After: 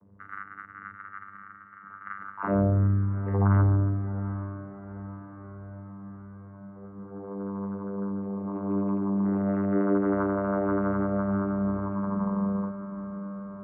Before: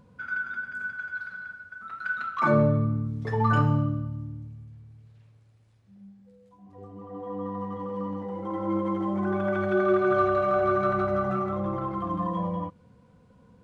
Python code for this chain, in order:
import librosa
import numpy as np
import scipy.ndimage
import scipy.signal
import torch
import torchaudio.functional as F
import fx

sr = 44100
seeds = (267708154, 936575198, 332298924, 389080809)

y = scipy.signal.sosfilt(scipy.signal.butter(4, 1800.0, 'lowpass', fs=sr, output='sos'), x)
y = fx.vocoder(y, sr, bands=16, carrier='saw', carrier_hz=99.0)
y = fx.echo_diffused(y, sr, ms=788, feedback_pct=62, wet_db=-12.5)